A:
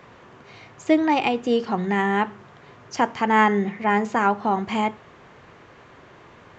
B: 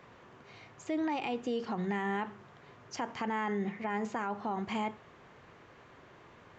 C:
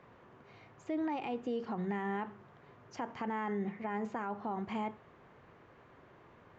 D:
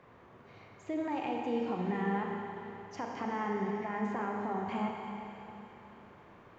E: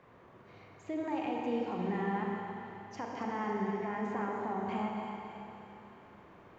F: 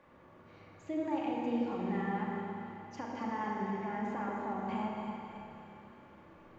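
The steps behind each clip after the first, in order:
limiter -17.5 dBFS, peak gain reduction 10.5 dB; gain -8 dB
high shelf 2900 Hz -11.5 dB; gain -2 dB
Schroeder reverb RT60 3.4 s, combs from 30 ms, DRR 0 dB
echo with dull and thin repeats by turns 0.138 s, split 880 Hz, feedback 52%, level -4.5 dB; gain -1.5 dB
shoebox room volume 3300 m³, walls furnished, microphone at 2.4 m; gain -3 dB

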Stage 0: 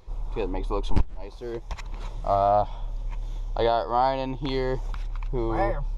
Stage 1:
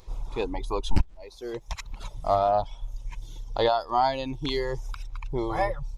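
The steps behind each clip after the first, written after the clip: reverb removal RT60 1.7 s; high shelf 3400 Hz +9.5 dB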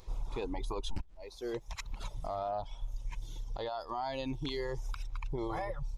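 compressor 2:1, threshold -29 dBFS, peak gain reduction 8.5 dB; limiter -25 dBFS, peak gain reduction 9.5 dB; gain -2.5 dB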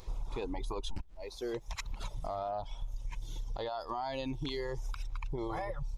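compressor 2.5:1, threshold -39 dBFS, peak gain reduction 6.5 dB; gain +4 dB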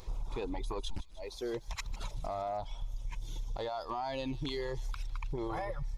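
soft clip -26.5 dBFS, distortion -26 dB; thin delay 0.153 s, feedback 67%, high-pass 3100 Hz, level -14 dB; gain +1 dB

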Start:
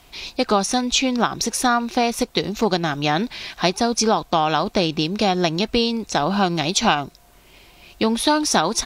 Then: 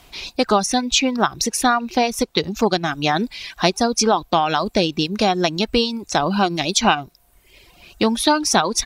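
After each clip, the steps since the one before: reverb removal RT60 1 s; gain +2 dB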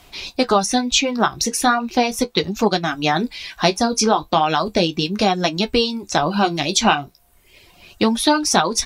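flange 0.37 Hz, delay 9.7 ms, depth 4.8 ms, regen -45%; gain +4.5 dB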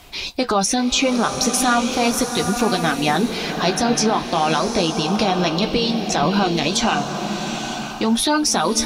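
limiter -12.5 dBFS, peak gain reduction 11 dB; bloom reverb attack 0.93 s, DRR 5.5 dB; gain +3.5 dB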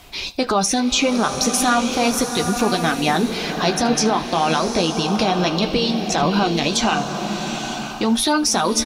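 echo 77 ms -21.5 dB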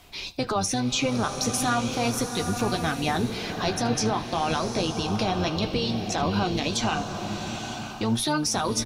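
octaver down 1 oct, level -4 dB; gain -7.5 dB

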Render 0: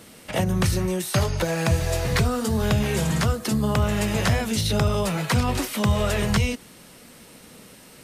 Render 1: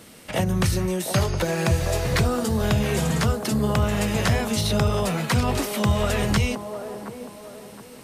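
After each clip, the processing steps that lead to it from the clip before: band-limited delay 0.717 s, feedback 36%, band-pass 520 Hz, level -6 dB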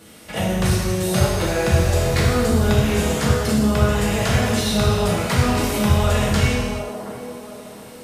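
non-linear reverb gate 0.46 s falling, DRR -5.5 dB; gain -3 dB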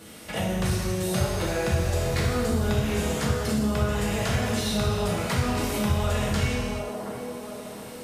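compressor 1.5:1, threshold -34 dBFS, peak gain reduction 8.5 dB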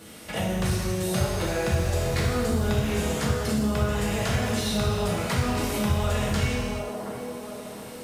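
companded quantiser 8-bit

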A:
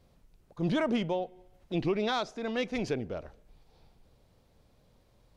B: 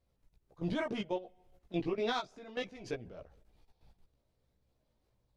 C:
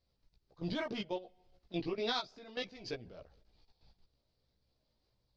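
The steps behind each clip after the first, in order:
level quantiser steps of 15 dB; chorus voices 4, 0.74 Hz, delay 16 ms, depth 1.7 ms
synth low-pass 4700 Hz, resonance Q 4.3; gain -3 dB

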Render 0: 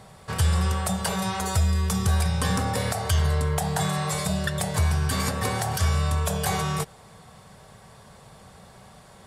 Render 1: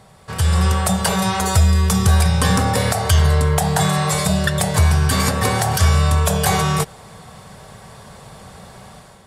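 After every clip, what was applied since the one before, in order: AGC gain up to 9 dB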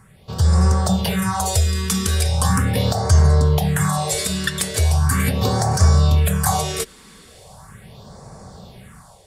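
phaser stages 4, 0.39 Hz, lowest notch 110–3000 Hz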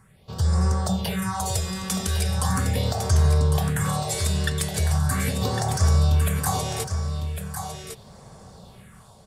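echo 1.104 s -7.5 dB; gain -6 dB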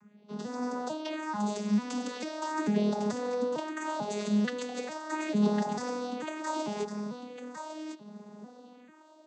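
arpeggiated vocoder minor triad, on G#3, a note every 0.444 s; gain -3.5 dB

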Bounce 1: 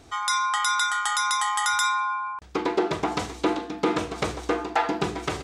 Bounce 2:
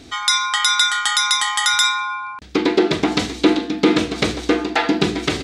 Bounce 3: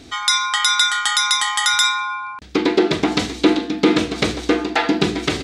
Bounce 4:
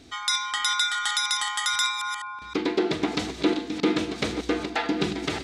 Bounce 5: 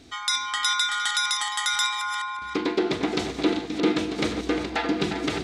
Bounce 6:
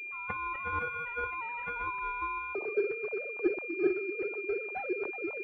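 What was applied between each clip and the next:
graphic EQ 250/1000/2000/4000 Hz +9/-6/+4/+8 dB; gain +5 dB
nothing audible
reverse delay 0.317 s, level -10 dB; gain -8.5 dB
darkening echo 0.352 s, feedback 37%, low-pass 2500 Hz, level -7 dB
sine-wave speech; pulse-width modulation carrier 2400 Hz; gain -6 dB

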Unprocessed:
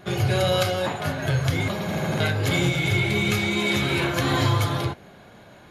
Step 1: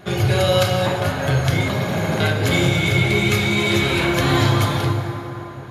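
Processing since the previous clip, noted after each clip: plate-style reverb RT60 3.8 s, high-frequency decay 0.5×, DRR 4.5 dB; gain +3.5 dB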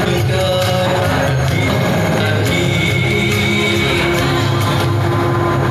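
fast leveller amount 100%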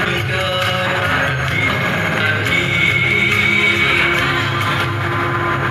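band shelf 1900 Hz +11 dB; gain -6 dB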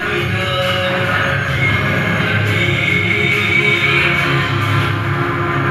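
shoebox room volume 260 m³, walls mixed, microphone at 3.1 m; gain -9.5 dB

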